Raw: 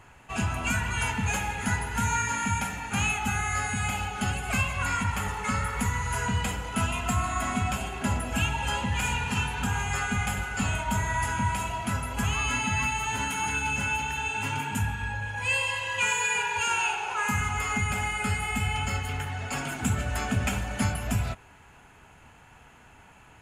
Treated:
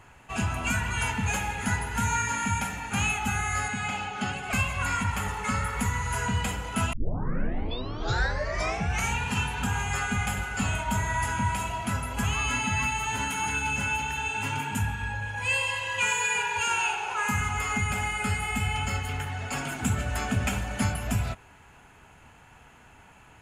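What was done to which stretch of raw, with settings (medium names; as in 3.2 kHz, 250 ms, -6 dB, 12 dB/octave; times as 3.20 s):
3.68–4.53 s: band-pass 140–5900 Hz
6.93 s: tape start 2.27 s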